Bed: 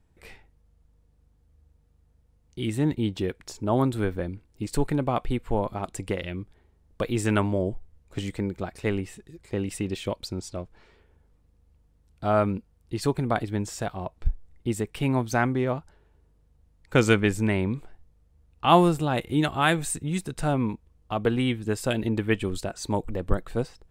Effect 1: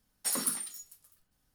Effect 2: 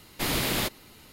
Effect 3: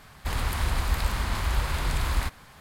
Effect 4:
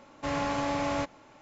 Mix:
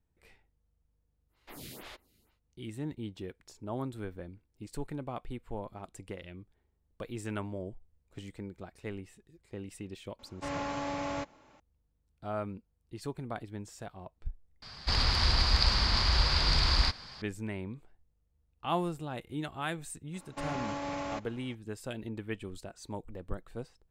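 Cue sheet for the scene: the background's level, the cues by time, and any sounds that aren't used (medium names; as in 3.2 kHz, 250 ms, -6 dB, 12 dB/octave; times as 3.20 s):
bed -13.5 dB
1.28 s: add 2 -16.5 dB, fades 0.10 s + lamp-driven phase shifter 2.1 Hz
10.19 s: add 4 -5.5 dB
14.62 s: replace with 3 -1.5 dB + resonant low-pass 4.8 kHz, resonance Q 10
20.14 s: add 4 -3.5 dB + peak limiter -24 dBFS
not used: 1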